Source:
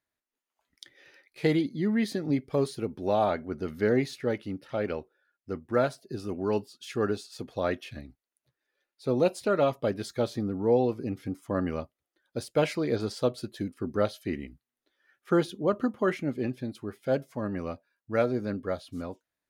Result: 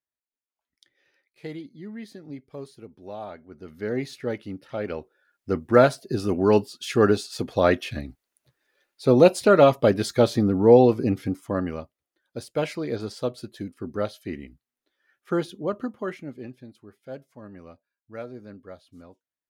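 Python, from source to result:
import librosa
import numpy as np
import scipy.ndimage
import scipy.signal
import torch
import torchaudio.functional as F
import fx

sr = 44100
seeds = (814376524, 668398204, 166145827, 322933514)

y = fx.gain(x, sr, db=fx.line((3.46, -11.5), (4.13, 0.0), (4.85, 0.0), (5.54, 9.5), (11.11, 9.5), (11.81, -1.0), (15.62, -1.0), (16.82, -11.0)))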